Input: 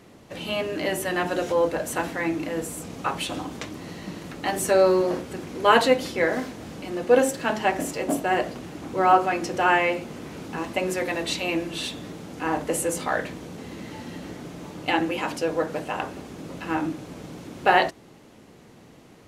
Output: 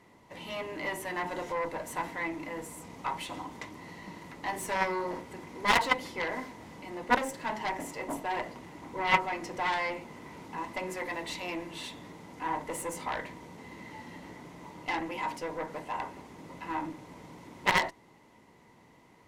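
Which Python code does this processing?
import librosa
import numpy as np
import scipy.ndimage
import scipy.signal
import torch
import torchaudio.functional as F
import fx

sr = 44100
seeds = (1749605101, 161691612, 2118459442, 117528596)

y = fx.cheby_harmonics(x, sr, harmonics=(3, 6, 7, 8), levels_db=(-8, -20, -37, -22), full_scale_db=-3.0)
y = np.clip(10.0 ** (13.0 / 20.0) * y, -1.0, 1.0) / 10.0 ** (13.0 / 20.0)
y = fx.small_body(y, sr, hz=(960.0, 2000.0), ring_ms=25, db=14)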